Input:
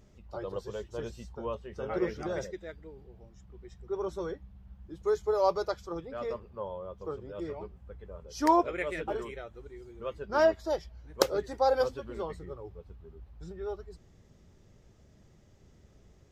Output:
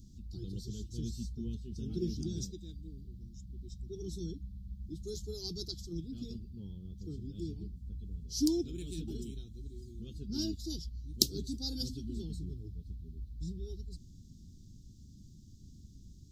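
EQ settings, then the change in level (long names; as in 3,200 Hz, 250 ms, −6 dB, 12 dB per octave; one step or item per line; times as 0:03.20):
elliptic band-stop filter 270–4,100 Hz, stop band 40 dB
+6.5 dB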